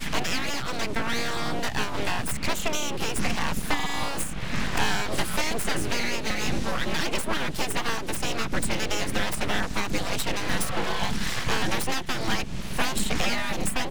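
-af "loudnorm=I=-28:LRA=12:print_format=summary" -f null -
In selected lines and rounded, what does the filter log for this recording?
Input Integrated:    -28.0 LUFS
Input True Peak:      -9.5 dBTP
Input LRA:             0.6 LU
Input Threshold:     -38.0 LUFS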